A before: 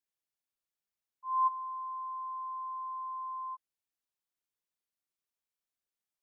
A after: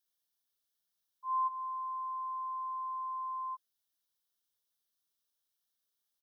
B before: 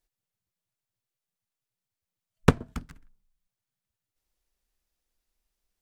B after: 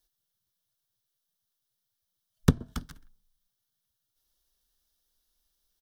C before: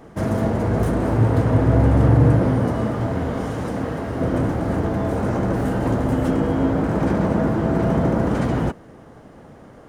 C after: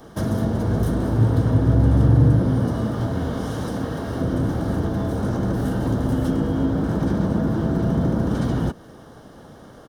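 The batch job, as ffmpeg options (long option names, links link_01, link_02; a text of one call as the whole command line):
ffmpeg -i in.wav -filter_complex "[0:a]firequalizer=gain_entry='entry(740,0);entry(4000,13);entry(7200,-20)':delay=0.05:min_phase=1,aexciter=amount=14:drive=7.9:freq=6500,acrossover=split=340[link_01][link_02];[link_02]acompressor=threshold=-29dB:ratio=10[link_03];[link_01][link_03]amix=inputs=2:normalize=0,equalizer=frequency=2500:width=4.8:gain=-14,bandreject=frequency=2000:width=7.3" out.wav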